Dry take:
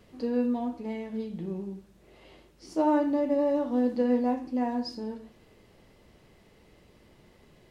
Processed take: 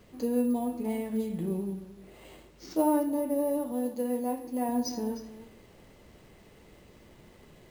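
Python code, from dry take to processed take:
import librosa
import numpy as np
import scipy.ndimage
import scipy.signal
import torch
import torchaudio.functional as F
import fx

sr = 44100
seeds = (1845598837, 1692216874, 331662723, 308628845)

p1 = np.repeat(x[::4], 4)[:len(x)]
p2 = p1 + fx.echo_single(p1, sr, ms=306, db=-16.0, dry=0)
p3 = fx.dynamic_eq(p2, sr, hz=1600.0, q=1.2, threshold_db=-48.0, ratio=4.0, max_db=-6)
p4 = fx.rider(p3, sr, range_db=3, speed_s=0.5)
y = fx.low_shelf(p4, sr, hz=330.0, db=-6.0, at=(3.72, 4.69))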